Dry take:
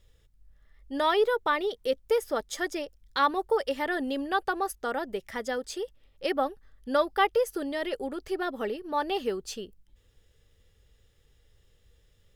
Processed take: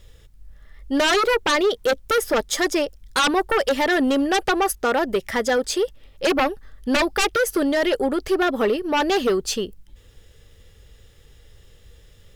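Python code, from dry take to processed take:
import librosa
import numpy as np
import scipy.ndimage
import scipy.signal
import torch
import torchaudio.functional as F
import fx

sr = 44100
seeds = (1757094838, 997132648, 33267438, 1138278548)

y = fx.fold_sine(x, sr, drive_db=13, ceiling_db=-11.0)
y = F.gain(torch.from_numpy(y), -3.5).numpy()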